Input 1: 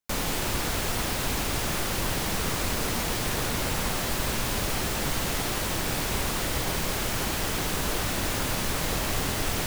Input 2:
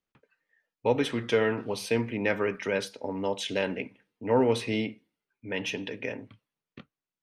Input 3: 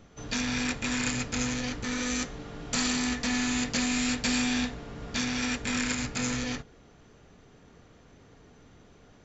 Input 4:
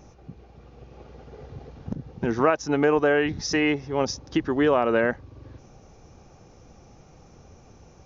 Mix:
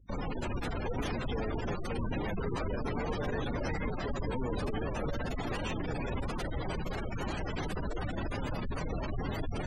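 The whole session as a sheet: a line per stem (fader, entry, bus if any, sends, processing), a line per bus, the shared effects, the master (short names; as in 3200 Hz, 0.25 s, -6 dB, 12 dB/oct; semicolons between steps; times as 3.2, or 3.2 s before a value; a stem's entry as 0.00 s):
-4.0 dB, 0.00 s, no bus, no send, hum 50 Hz, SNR 27 dB
-6.0 dB, 0.00 s, bus A, no send, high shelf 7200 Hz +7.5 dB; notches 50/100/150/200 Hz
-8.0 dB, 0.00 s, no bus, no send, elliptic low-pass 3100 Hz, stop band 70 dB; limiter -25 dBFS, peak gain reduction 6.5 dB; auto duck -7 dB, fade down 0.85 s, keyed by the second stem
-10.0 dB, 0.15 s, bus A, no send, band shelf 1000 Hz +9 dB 2.9 oct; compressor 16:1, threshold -20 dBFS, peak gain reduction 15 dB
bus A: 0.0 dB, soft clip -20 dBFS, distortion -23 dB; limiter -31.5 dBFS, peak gain reduction 10 dB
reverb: off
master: spectral gate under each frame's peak -15 dB strong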